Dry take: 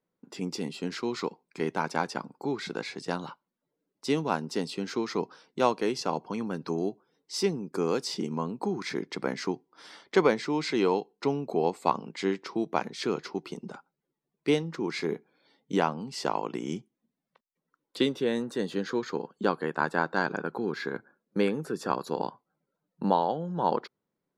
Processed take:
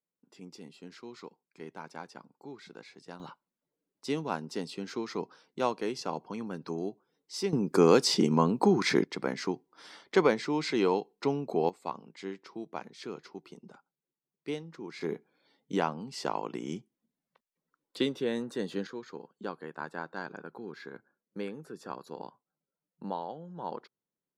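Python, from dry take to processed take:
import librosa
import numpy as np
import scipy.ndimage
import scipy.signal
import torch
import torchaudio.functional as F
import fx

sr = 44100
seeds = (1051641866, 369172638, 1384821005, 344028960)

y = fx.gain(x, sr, db=fx.steps((0.0, -14.5), (3.2, -5.0), (7.53, 7.0), (9.04, -1.5), (11.69, -11.0), (15.01, -3.5), (18.87, -11.5)))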